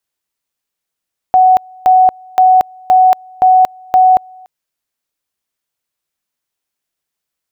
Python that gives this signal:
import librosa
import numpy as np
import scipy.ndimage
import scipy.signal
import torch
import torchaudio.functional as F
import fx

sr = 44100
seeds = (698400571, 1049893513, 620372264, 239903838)

y = fx.two_level_tone(sr, hz=744.0, level_db=-4.0, drop_db=29.5, high_s=0.23, low_s=0.29, rounds=6)